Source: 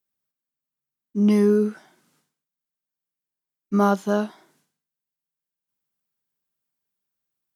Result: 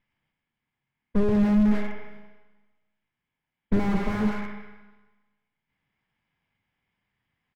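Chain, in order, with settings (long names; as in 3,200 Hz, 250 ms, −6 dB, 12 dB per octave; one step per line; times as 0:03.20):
lower of the sound and its delayed copy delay 1.3 ms
parametric band 1,700 Hz +11.5 dB 0.37 octaves
comb filter 0.8 ms, depth 59%
brickwall limiter −18 dBFS, peak gain reduction 8.5 dB
formants moved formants +5 semitones
high-frequency loss of the air 370 metres
four-comb reverb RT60 1.2 s, combs from 30 ms, DRR 7.5 dB
slew-rate limiting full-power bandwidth 10 Hz
level +9 dB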